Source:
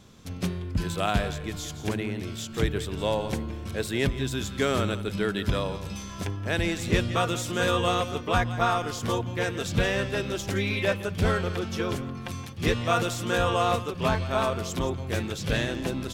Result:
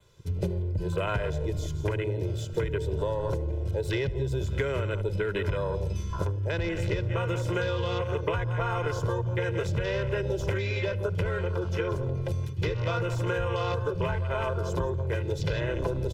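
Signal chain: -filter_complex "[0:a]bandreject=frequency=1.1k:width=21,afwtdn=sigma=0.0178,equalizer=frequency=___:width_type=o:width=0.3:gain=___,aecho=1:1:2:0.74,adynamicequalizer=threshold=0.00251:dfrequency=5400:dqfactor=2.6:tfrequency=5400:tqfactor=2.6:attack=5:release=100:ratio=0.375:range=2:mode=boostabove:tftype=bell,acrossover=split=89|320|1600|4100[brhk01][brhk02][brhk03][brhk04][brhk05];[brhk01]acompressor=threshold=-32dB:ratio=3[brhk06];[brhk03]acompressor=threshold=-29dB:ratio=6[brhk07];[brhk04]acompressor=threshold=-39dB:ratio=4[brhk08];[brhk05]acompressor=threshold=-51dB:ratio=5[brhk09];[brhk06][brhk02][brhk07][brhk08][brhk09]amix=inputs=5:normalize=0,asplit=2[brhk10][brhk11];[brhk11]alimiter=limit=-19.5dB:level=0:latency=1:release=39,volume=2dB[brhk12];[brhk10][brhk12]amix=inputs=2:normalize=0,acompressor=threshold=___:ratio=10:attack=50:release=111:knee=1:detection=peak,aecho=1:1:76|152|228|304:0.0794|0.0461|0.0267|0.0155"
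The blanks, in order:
220, -15, -29dB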